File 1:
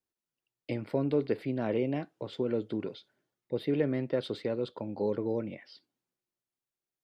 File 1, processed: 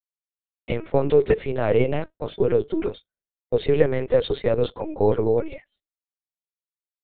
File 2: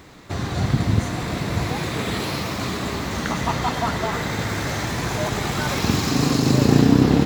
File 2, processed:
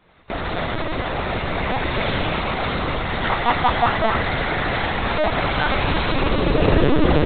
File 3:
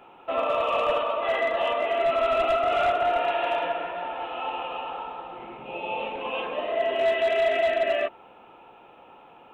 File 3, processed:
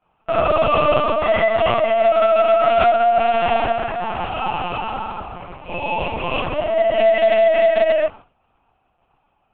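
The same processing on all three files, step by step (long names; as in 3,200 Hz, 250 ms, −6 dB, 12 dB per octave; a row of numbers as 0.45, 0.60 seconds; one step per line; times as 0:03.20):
downward expander −36 dBFS
Butterworth high-pass 300 Hz 48 dB per octave
linear-prediction vocoder at 8 kHz pitch kept
normalise the peak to −3 dBFS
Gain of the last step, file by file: +12.5, +7.0, +8.5 decibels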